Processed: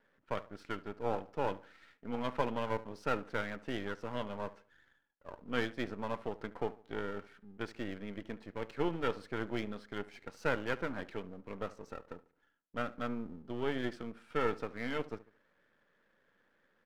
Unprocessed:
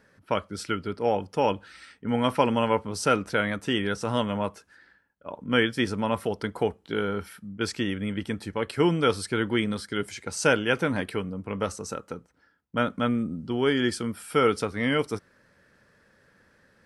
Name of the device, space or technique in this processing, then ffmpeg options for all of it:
crystal radio: -filter_complex "[0:a]highpass=230,lowpass=2500,asplit=2[link_01][link_02];[link_02]adelay=72,lowpass=frequency=1600:poles=1,volume=-17dB,asplit=2[link_03][link_04];[link_04]adelay=72,lowpass=frequency=1600:poles=1,volume=0.39,asplit=2[link_05][link_06];[link_06]adelay=72,lowpass=frequency=1600:poles=1,volume=0.39[link_07];[link_01][link_03][link_05][link_07]amix=inputs=4:normalize=0,aeval=exprs='if(lt(val(0),0),0.251*val(0),val(0))':channel_layout=same,volume=-7dB"

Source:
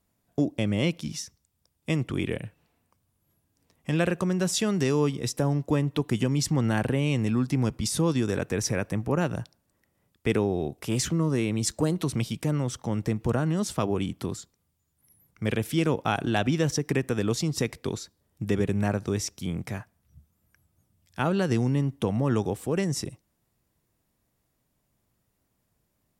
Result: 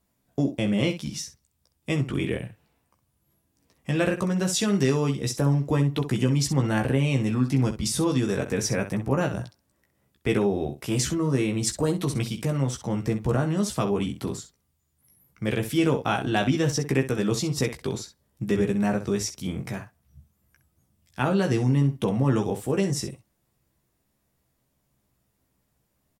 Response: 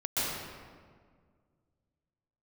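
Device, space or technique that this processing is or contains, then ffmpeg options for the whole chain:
slapback doubling: -filter_complex "[0:a]asplit=3[link_01][link_02][link_03];[link_02]adelay=15,volume=-4dB[link_04];[link_03]adelay=64,volume=-10.5dB[link_05];[link_01][link_04][link_05]amix=inputs=3:normalize=0"

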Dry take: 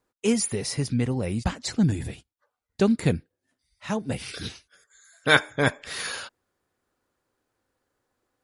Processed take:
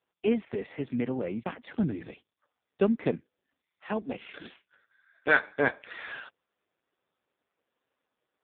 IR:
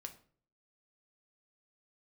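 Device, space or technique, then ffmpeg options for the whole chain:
telephone: -af "highpass=260,lowpass=3200,asoftclip=type=tanh:threshold=-7.5dB" -ar 8000 -c:a libopencore_amrnb -b:a 5150

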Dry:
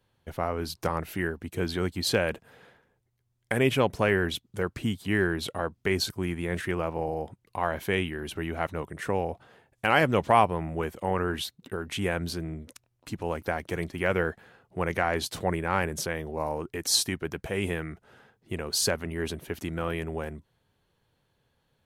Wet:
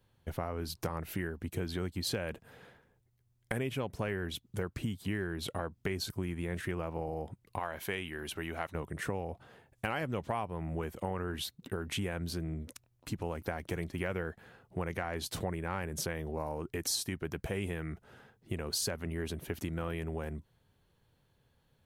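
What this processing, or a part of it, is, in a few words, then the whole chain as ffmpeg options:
ASMR close-microphone chain: -filter_complex "[0:a]asettb=1/sr,asplit=3[link_01][link_02][link_03];[link_01]atrim=end=7.594[link_04];[link_02]atrim=start=7.59:end=8.75,asetpts=PTS-STARTPTS,afade=type=in:duration=0.004:curve=qsin,afade=type=out:start_time=1.156:duration=0.004:curve=qsin,lowshelf=frequency=400:gain=-10.5[link_05];[link_03]atrim=start=8.746[link_06];[link_04][link_05]acrossfade=duration=0.004:curve1=hsin:curve2=qsin[link_07];[link_07][link_06]acrossfade=duration=0.004:curve1=qsin:curve2=hsin,lowshelf=frequency=210:gain=6,acompressor=threshold=-30dB:ratio=6,highshelf=frequency=12000:gain=5.5,volume=-2dB"

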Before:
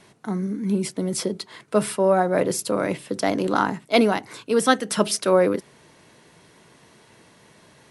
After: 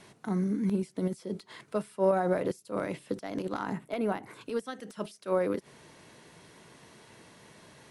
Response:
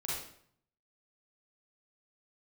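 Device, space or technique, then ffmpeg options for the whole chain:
de-esser from a sidechain: -filter_complex "[0:a]asettb=1/sr,asplit=3[link_01][link_02][link_03];[link_01]atrim=end=3.734[link_04];[link_02]atrim=start=3.73:end=4.41,asetpts=PTS-STARTPTS,afade=type=in:duration=0.004:curve=qsin,afade=type=out:start_time=0.676:duration=0.004:curve=qsin,equalizer=frequency=5200:width=0.8:gain=-12.5[link_05];[link_03]atrim=start=4.406[link_06];[link_04][link_05]acrossfade=duration=0.004:curve1=hsin:curve2=qsin[link_07];[link_07][link_06]acrossfade=duration=0.004:curve1=qsin:curve2=hsin,asplit=2[link_08][link_09];[link_09]highpass=6700,apad=whole_len=348656[link_10];[link_08][link_10]sidechaincompress=threshold=-55dB:ratio=5:attack=1.5:release=70,volume=-1.5dB"

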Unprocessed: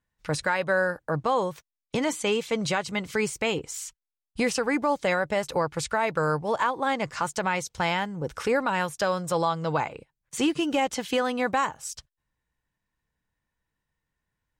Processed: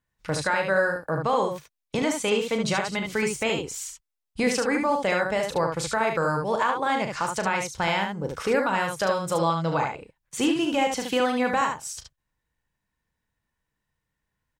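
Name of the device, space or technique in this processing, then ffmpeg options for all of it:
slapback doubling: -filter_complex "[0:a]asplit=3[link_01][link_02][link_03];[link_02]adelay=36,volume=-8.5dB[link_04];[link_03]adelay=73,volume=-5dB[link_05];[link_01][link_04][link_05]amix=inputs=3:normalize=0"

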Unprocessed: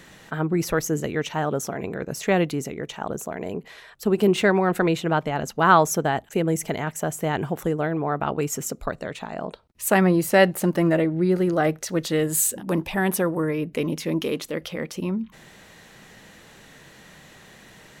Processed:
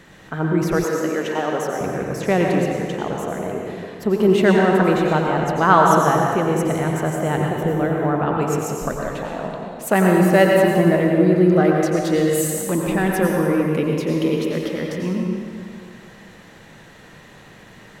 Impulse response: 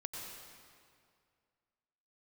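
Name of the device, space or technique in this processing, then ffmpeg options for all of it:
swimming-pool hall: -filter_complex "[1:a]atrim=start_sample=2205[link_01];[0:a][link_01]afir=irnorm=-1:irlink=0,highshelf=frequency=3100:gain=-7.5,asettb=1/sr,asplit=3[link_02][link_03][link_04];[link_02]atrim=end=0.844[link_05];[link_03]atrim=start=0.84:end=1.81,asetpts=PTS-STARTPTS,afade=type=in:duration=0.004:curve=qsin,afade=type=out:start_time=0.966:duration=0.004:curve=qsin,highpass=290[link_06];[link_04]atrim=start=1.806[link_07];[link_05][link_06]acrossfade=duration=0.004:curve1=hsin:curve2=qsin[link_08];[link_08][link_07]acrossfade=duration=0.004:curve1=qsin:curve2=hsin,volume=6dB"

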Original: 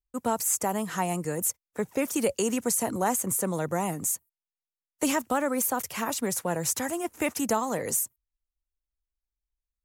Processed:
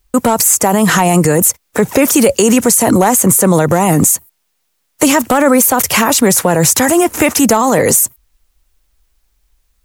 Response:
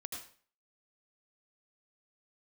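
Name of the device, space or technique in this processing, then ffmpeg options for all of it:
loud club master: -af "acompressor=threshold=-29dB:ratio=2,asoftclip=type=hard:threshold=-21.5dB,alimiter=level_in=30dB:limit=-1dB:release=50:level=0:latency=1,volume=-1dB"

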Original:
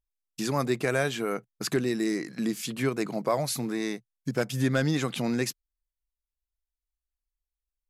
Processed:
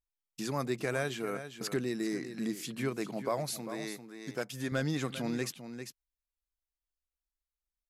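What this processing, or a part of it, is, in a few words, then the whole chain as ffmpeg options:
ducked delay: -filter_complex "[0:a]asettb=1/sr,asplit=3[link_01][link_02][link_03];[link_01]atrim=end=3.534[link_04];[link_02]atrim=start=3.53:end=4.72,asetpts=PTS-STARTPTS,afade=type=in:duration=0.004:curve=qsin,afade=type=out:start_time=1.186:duration=0.004:curve=qsin,lowshelf=frequency=230:gain=-10[link_05];[link_03]atrim=start=4.716[link_06];[link_04][link_05]acrossfade=duration=0.004:curve1=hsin:curve2=qsin[link_07];[link_07][link_06]acrossfade=duration=0.004:curve1=qsin:curve2=hsin,asplit=3[link_08][link_09][link_10];[link_09]adelay=397,volume=-6.5dB[link_11];[link_10]apad=whole_len=365635[link_12];[link_11][link_12]sidechaincompress=threshold=-27dB:ratio=8:attack=5.1:release=928[link_13];[link_08][link_13]amix=inputs=2:normalize=0,volume=-6.5dB"

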